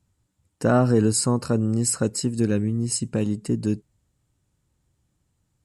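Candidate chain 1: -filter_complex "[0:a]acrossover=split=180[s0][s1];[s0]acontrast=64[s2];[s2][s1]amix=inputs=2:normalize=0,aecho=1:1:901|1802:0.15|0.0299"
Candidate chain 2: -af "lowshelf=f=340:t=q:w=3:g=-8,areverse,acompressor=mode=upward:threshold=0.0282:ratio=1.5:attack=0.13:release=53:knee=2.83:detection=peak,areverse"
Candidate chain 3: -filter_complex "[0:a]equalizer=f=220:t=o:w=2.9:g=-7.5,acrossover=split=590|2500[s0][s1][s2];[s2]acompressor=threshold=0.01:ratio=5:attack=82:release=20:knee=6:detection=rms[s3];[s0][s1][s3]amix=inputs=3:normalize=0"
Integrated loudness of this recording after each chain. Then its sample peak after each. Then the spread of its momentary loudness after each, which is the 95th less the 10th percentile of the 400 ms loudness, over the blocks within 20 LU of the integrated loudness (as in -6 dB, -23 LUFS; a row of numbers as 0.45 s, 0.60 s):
-20.5 LUFS, -24.0 LUFS, -29.0 LUFS; -5.5 dBFS, -7.0 dBFS, -12.0 dBFS; 22 LU, 11 LU, 7 LU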